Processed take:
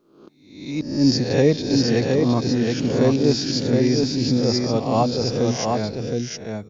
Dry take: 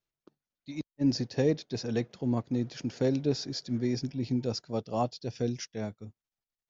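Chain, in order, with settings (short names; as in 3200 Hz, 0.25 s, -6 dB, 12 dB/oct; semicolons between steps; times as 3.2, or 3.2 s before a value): spectral swells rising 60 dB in 0.69 s; echo 0.717 s -3.5 dB; gain +8.5 dB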